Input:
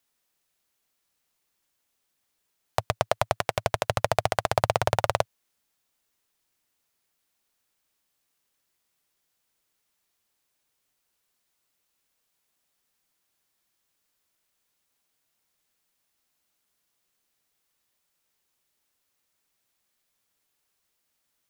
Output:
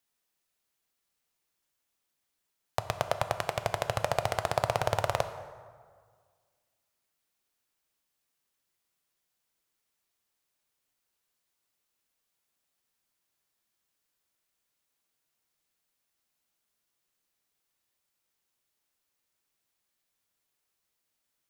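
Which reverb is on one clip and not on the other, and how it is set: plate-style reverb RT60 1.8 s, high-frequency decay 0.55×, DRR 9 dB; gain -5 dB

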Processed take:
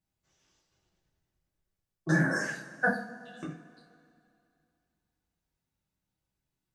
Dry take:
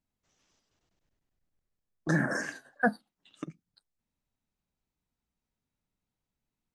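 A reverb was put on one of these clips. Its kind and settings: two-slope reverb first 0.34 s, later 2.5 s, from -20 dB, DRR -5.5 dB; gain -5.5 dB

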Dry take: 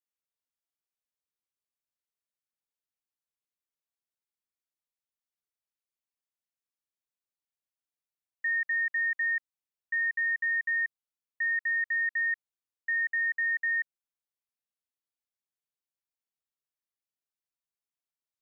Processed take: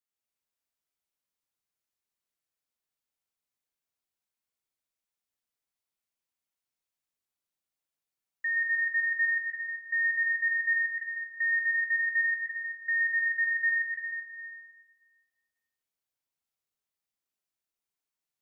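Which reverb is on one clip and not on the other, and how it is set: plate-style reverb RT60 1.6 s, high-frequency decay 0.95×, pre-delay 0.115 s, DRR -2.5 dB; gain -1 dB

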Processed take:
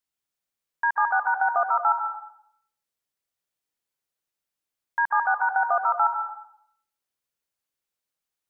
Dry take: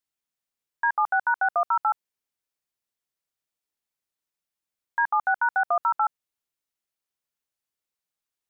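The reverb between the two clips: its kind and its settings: plate-style reverb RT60 0.68 s, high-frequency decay 0.8×, pre-delay 0.12 s, DRR 4 dB

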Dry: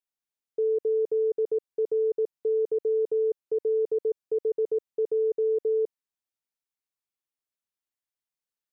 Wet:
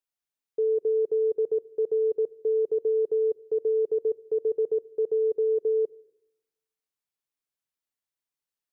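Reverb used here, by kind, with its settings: shoebox room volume 2500 m³, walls furnished, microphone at 0.31 m

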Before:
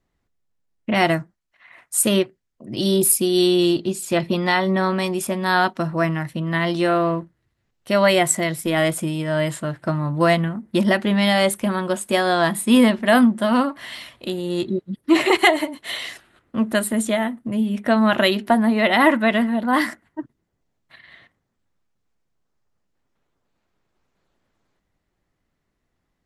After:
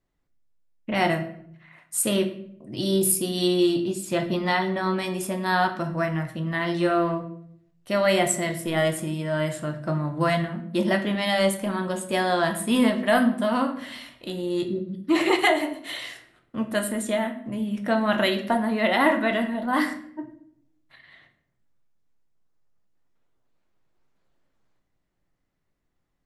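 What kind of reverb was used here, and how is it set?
shoebox room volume 120 m³, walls mixed, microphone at 0.47 m; gain -6 dB

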